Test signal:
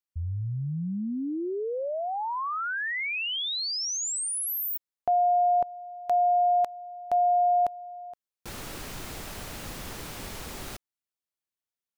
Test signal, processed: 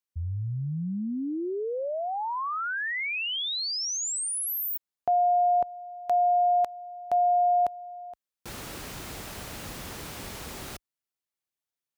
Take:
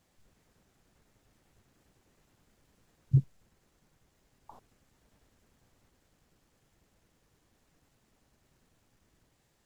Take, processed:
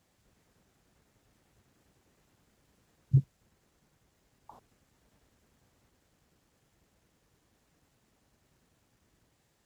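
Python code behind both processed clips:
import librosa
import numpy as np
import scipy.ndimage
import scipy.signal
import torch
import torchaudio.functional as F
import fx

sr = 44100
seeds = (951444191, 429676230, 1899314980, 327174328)

y = scipy.signal.sosfilt(scipy.signal.butter(2, 40.0, 'highpass', fs=sr, output='sos'), x)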